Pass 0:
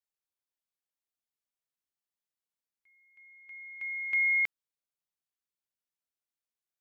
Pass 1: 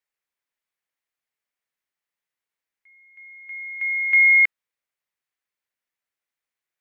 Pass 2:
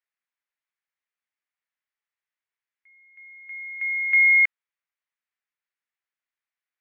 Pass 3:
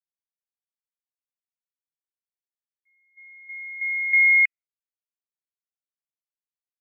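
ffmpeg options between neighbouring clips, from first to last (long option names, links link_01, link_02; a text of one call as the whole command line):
ffmpeg -i in.wav -af "equalizer=frequency=500:width_type=o:width=1:gain=4,equalizer=frequency=1000:width_type=o:width=1:gain=3,equalizer=frequency=2000:width_type=o:width=1:gain=11,volume=1dB" out.wav
ffmpeg -i in.wav -af "bandpass=frequency=1700:width_type=q:width=0.76:csg=0,volume=-1.5dB" out.wav
ffmpeg -i in.wav -af "afftdn=noise_reduction=23:noise_floor=-35" out.wav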